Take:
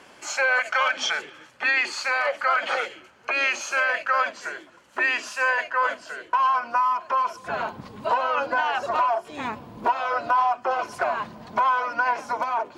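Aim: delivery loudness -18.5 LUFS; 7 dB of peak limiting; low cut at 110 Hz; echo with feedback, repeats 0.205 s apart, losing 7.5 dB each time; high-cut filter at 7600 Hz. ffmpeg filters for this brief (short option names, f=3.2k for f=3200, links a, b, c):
-af "highpass=110,lowpass=7.6k,alimiter=limit=-18.5dB:level=0:latency=1,aecho=1:1:205|410|615|820|1025:0.422|0.177|0.0744|0.0312|0.0131,volume=8.5dB"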